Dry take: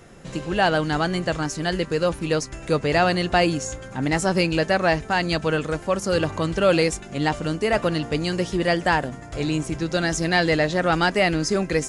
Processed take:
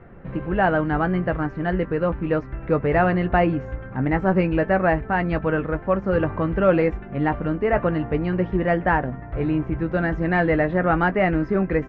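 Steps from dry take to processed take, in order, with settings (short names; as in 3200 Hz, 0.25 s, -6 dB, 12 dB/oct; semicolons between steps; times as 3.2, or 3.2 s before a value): LPF 2000 Hz 24 dB/oct; low shelf 120 Hz +7 dB; doubler 16 ms -11.5 dB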